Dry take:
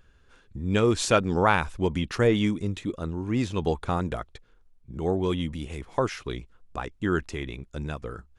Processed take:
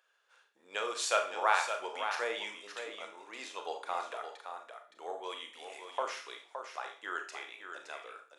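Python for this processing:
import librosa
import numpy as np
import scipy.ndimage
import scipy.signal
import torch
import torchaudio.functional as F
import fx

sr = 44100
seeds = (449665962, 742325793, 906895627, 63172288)

y = scipy.signal.sosfilt(scipy.signal.butter(4, 590.0, 'highpass', fs=sr, output='sos'), x)
y = y + 10.0 ** (-8.0 / 20.0) * np.pad(y, (int(567 * sr / 1000.0), 0))[:len(y)]
y = fx.rev_schroeder(y, sr, rt60_s=0.4, comb_ms=27, drr_db=4.5)
y = y * 10.0 ** (-6.5 / 20.0)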